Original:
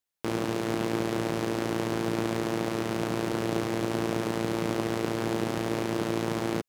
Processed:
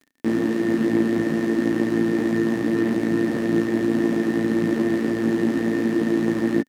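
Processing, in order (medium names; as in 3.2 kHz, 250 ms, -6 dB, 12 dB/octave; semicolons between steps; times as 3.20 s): chorus voices 4, 1.3 Hz, delay 15 ms, depth 3.4 ms; crackle 26 per s -42 dBFS; small resonant body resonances 260/1800 Hz, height 18 dB, ringing for 35 ms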